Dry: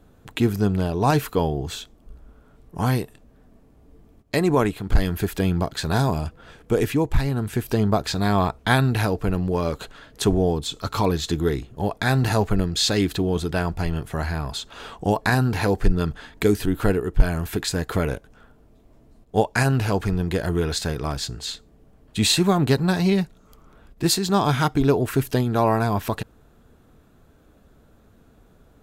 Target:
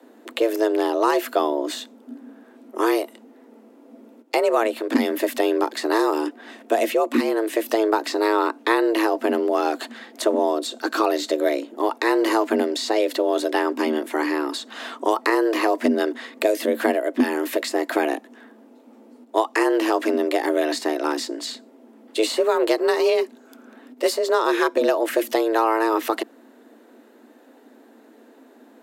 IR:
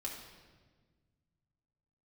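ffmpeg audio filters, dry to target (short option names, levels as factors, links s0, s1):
-filter_complex "[0:a]afreqshift=220,acrossover=split=240|1400[s0][s1][s2];[s0]acompressor=threshold=0.00708:ratio=4[s3];[s1]acompressor=threshold=0.1:ratio=4[s4];[s2]acompressor=threshold=0.0224:ratio=4[s5];[s3][s4][s5]amix=inputs=3:normalize=0,equalizer=f=2300:w=1.5:g=2.5,volume=1.5"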